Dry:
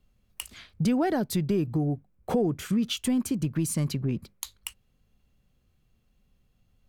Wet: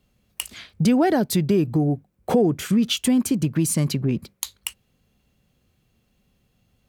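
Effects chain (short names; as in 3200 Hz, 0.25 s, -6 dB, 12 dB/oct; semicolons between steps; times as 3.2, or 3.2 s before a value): HPF 120 Hz 6 dB/oct; bell 1200 Hz -2.5 dB; gain +7.5 dB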